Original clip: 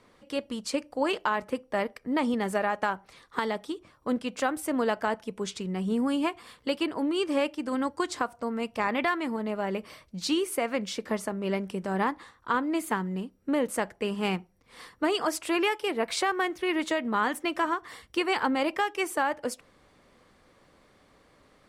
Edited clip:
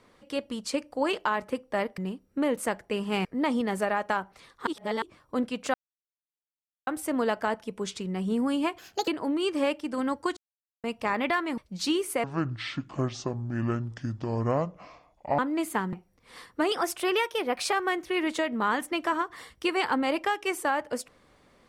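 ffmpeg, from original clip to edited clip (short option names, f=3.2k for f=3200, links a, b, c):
-filter_complex "[0:a]asplit=16[a][b][c][d][e][f][g][h][i][j][k][l][m][n][o][p];[a]atrim=end=1.982[q];[b]atrim=start=13.088:end=14.362[r];[c]atrim=start=1.978:end=3.402[s];[d]atrim=start=3.398:end=3.752,asetpts=PTS-STARTPTS,areverse[t];[e]atrim=start=3.748:end=4.47,asetpts=PTS-STARTPTS,afade=t=out:st=0.718:d=0.004:c=hsin,apad=pad_dur=1.13[u];[f]atrim=start=4.47:end=6.384,asetpts=PTS-STARTPTS,afade=t=in:d=0.004:c=hsin[v];[g]atrim=start=6.38:end=6.82,asetpts=PTS-STARTPTS,asetrate=65268,aresample=44100[w];[h]atrim=start=6.816:end=8.11,asetpts=PTS-STARTPTS,afade=t=out:st=1.29:d=0.004:c=hsin[x];[i]atrim=start=8.11:end=8.58,asetpts=PTS-STARTPTS,volume=0[y];[j]atrim=start=8.58:end=9.322,asetpts=PTS-STARTPTS,afade=t=in:d=0.004:c=hsin[z];[k]atrim=start=9.998:end=10.664[aa];[l]atrim=start=10.66:end=12.55,asetpts=PTS-STARTPTS,asetrate=26460,aresample=44100[ab];[m]atrim=start=12.546:end=13.092[ac];[n]atrim=start=14.358:end=15.154[ad];[o]atrim=start=15.15:end=16.25,asetpts=PTS-STARTPTS,asetrate=48069,aresample=44100[ae];[p]atrim=start=16.246[af];[q][r]acrossfade=d=0.004:c1=hsin:c2=hsin[ag];[ag][s]acrossfade=d=0.004:c1=hsin:c2=hsin[ah];[ah][t]acrossfade=d=0.004:c1=hsin:c2=hsin[ai];[u][v]concat=n=2:v=0:a=1[aj];[ai][aj]acrossfade=d=0.004:c1=hsin:c2=hsin[ak];[ak][w]acrossfade=d=0.004:c1=hsin:c2=hsin[al];[x][y][z]concat=n=3:v=0:a=1[am];[al][am]acrossfade=d=0.004:c1=hsin:c2=hsin[an];[an][aa]acrossfade=d=0.004:c1=hsin:c2=hsin[ao];[ao][ab]acrossfade=d=0.004:c1=hsin:c2=hsin[ap];[ap][ac]acrossfade=d=0.004:c1=hsin:c2=hsin[aq];[aq][ad]acrossfade=d=0.004:c1=hsin:c2=hsin[ar];[ar][ae]acrossfade=d=0.004:c1=hsin:c2=hsin[as];[as][af]acrossfade=d=0.004:c1=hsin:c2=hsin"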